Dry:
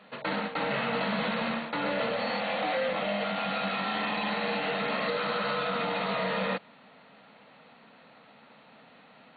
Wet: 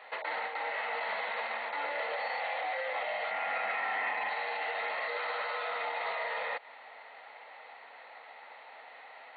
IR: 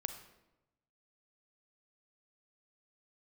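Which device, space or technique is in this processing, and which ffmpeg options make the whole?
laptop speaker: -filter_complex "[0:a]highpass=f=430:w=0.5412,highpass=f=430:w=1.3066,equalizer=f=830:t=o:w=0.57:g=9,equalizer=f=2k:t=o:w=0.35:g=11.5,alimiter=level_in=2.5dB:limit=-24dB:level=0:latency=1:release=136,volume=-2.5dB,asettb=1/sr,asplit=3[a][b][c];[a]atrim=end=3.314[d];[b]atrim=start=3.31:end=4.29,asetpts=PTS-STARTPTS,afade=t=in:d=0.004:c=qsin,afade=t=out:st=0.976:d=0.004:c=qsin,equalizer=f=250:t=o:w=1:g=8,equalizer=f=2k:t=o:w=1:g=5,equalizer=f=4k:t=o:w=1:g=-8[e];[c]atrim=start=4.286[f];[d][e]acrossfade=d=0.004:c1=hsin:c2=qsin[g];[g][f]acrossfade=d=0.004:c1=qsin:c2=hsin"

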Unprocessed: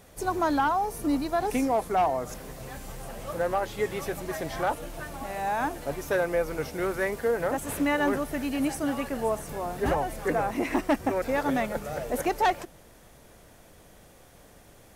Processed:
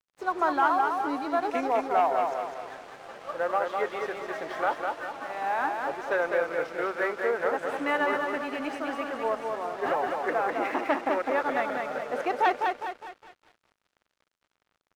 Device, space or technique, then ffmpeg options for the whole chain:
pocket radio on a weak battery: -af "highpass=400,lowpass=3.2k,aecho=1:1:204|408|612|816|1020|1224:0.631|0.29|0.134|0.0614|0.0283|0.013,aeval=exprs='sgn(val(0))*max(abs(val(0))-0.00335,0)':c=same,equalizer=f=1.3k:t=o:w=0.55:g=4.5"

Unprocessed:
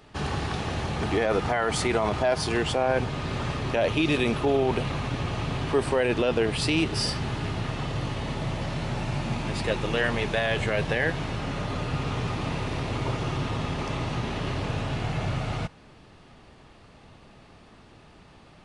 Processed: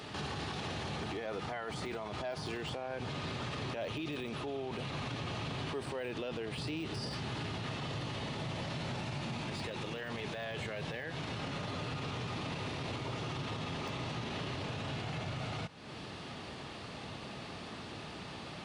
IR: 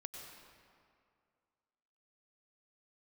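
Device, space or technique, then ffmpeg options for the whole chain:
broadcast voice chain: -af "highpass=96,deesser=0.95,acompressor=threshold=-45dB:ratio=3,equalizer=f=3.9k:t=o:w=1.2:g=5,alimiter=level_in=13.5dB:limit=-24dB:level=0:latency=1:release=34,volume=-13.5dB,volume=7dB"

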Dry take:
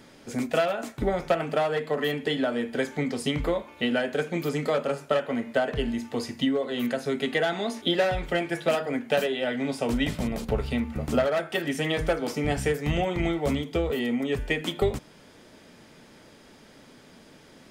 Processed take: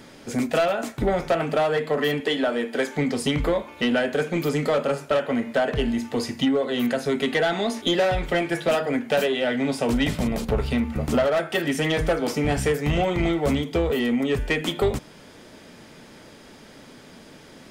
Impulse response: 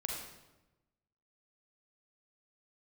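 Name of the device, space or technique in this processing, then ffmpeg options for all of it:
saturation between pre-emphasis and de-emphasis: -filter_complex "[0:a]asettb=1/sr,asplit=3[a][b][c];[a]atrim=end=2.204[d];[b]atrim=start=2.2:end=2.96,asetpts=PTS-STARTPTS,afade=t=in:d=0.004:c=qsin,afade=t=out:st=0.756:d=0.004:c=qsin,highpass=270[e];[c]atrim=start=2.956[f];[d][e]acrossfade=d=0.004:c1=hsin:c2=qsin[g];[g][f]acrossfade=d=0.004:c1=qsin:c2=hsin,highshelf=f=8.9k:g=10,asoftclip=type=tanh:threshold=-19.5dB,highshelf=f=8.9k:g=-10,volume=5.5dB"

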